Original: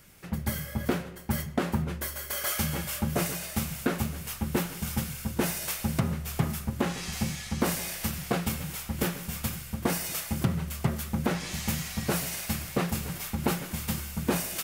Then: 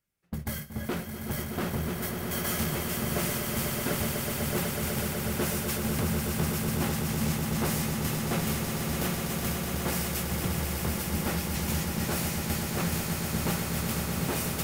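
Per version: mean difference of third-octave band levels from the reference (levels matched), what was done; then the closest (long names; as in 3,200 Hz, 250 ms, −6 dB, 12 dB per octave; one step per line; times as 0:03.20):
6.0 dB: noise gate −33 dBFS, range −29 dB
soft clipping −26 dBFS, distortion −10 dB
echo that builds up and dies away 124 ms, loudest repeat 8, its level −8 dB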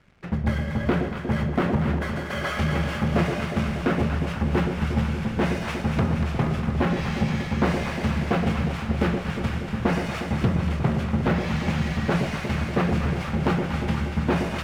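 9.0 dB: low-pass filter 2,400 Hz 12 dB per octave
leveller curve on the samples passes 2
on a send: delay that swaps between a low-pass and a high-pass 119 ms, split 810 Hz, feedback 84%, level −5.5 dB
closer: first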